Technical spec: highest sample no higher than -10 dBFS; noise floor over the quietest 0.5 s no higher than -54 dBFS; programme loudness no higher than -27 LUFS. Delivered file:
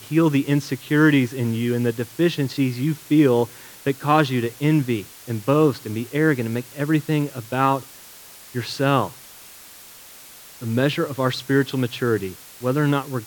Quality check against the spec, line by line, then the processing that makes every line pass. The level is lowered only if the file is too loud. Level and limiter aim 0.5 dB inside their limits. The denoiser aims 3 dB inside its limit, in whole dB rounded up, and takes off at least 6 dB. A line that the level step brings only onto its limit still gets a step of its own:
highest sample -3.5 dBFS: fail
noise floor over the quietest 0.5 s -44 dBFS: fail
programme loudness -21.5 LUFS: fail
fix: denoiser 7 dB, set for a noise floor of -44 dBFS; gain -6 dB; limiter -10.5 dBFS

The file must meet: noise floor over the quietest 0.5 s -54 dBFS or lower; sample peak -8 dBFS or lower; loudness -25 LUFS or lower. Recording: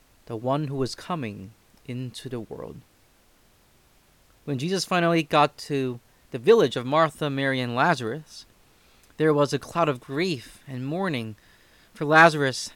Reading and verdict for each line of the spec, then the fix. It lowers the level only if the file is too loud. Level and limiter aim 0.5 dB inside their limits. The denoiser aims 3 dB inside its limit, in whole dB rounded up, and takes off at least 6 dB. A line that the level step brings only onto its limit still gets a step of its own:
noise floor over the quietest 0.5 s -60 dBFS: OK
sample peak -4.0 dBFS: fail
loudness -24.0 LUFS: fail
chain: gain -1.5 dB; limiter -8.5 dBFS

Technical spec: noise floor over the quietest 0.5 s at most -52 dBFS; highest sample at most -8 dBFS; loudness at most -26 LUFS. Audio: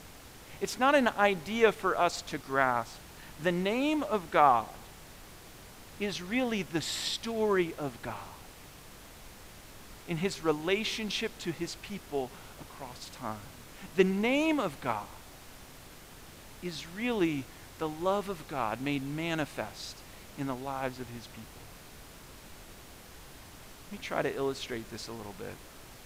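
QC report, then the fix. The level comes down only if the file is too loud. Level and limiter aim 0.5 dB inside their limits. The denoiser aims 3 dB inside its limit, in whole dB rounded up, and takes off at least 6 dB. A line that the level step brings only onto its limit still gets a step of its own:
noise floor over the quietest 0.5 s -50 dBFS: fail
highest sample -10.0 dBFS: OK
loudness -31.5 LUFS: OK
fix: denoiser 6 dB, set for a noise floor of -50 dBFS

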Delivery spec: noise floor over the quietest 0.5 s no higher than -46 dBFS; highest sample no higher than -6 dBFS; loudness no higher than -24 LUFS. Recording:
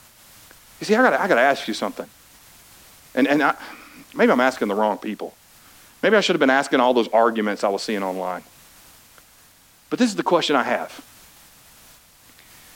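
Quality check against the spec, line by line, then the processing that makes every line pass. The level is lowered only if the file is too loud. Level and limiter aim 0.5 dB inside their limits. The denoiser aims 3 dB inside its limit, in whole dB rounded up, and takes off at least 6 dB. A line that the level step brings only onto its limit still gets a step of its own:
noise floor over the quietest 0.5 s -53 dBFS: OK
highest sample -5.0 dBFS: fail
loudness -20.0 LUFS: fail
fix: gain -4.5 dB

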